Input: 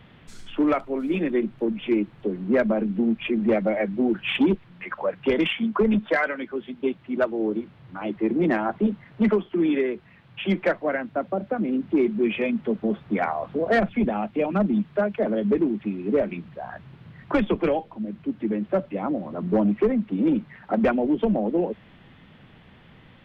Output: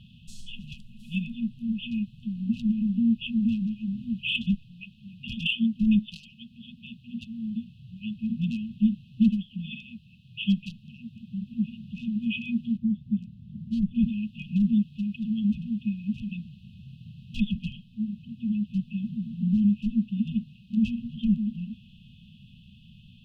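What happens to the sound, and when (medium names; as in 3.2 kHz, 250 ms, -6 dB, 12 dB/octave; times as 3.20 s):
12.77–13.95 s: resonant high shelf 1.5 kHz -11 dB, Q 3
18.74–19.56 s: comb 5.4 ms, depth 46%
whole clip: FFT band-reject 240–2500 Hz; trim +1 dB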